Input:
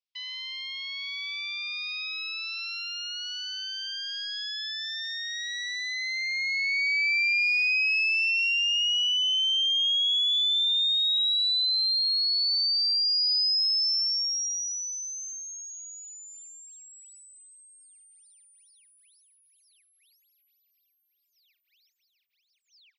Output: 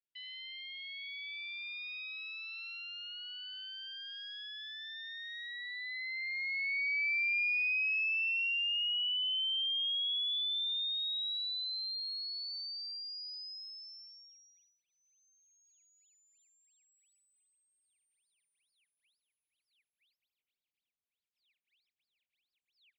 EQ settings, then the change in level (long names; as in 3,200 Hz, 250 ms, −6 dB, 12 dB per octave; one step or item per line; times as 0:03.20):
Gaussian smoothing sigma 1.6 samples
parametric band 2,700 Hz −6 dB 2.7 octaves
phaser with its sweep stopped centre 2,600 Hz, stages 4
0.0 dB